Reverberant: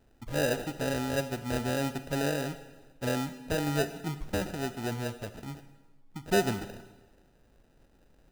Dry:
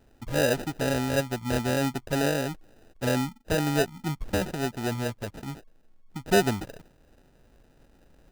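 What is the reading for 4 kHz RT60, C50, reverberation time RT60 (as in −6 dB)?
1.1 s, 12.0 dB, 1.2 s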